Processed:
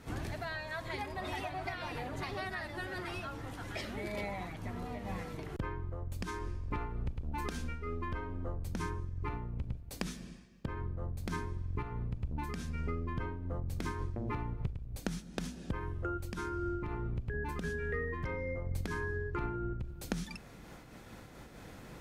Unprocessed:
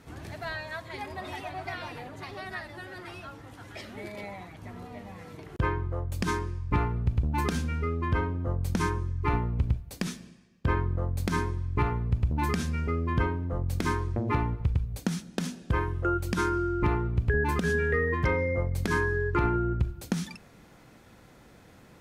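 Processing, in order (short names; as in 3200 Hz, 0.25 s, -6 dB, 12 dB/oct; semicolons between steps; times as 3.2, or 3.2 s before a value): octaver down 2 oct, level -5 dB; 6.26–8.66 bell 130 Hz -7 dB 1.5 oct; compressor 6:1, threshold -38 dBFS, peak gain reduction 18 dB; noise-modulated level, depth 60%; gain +6 dB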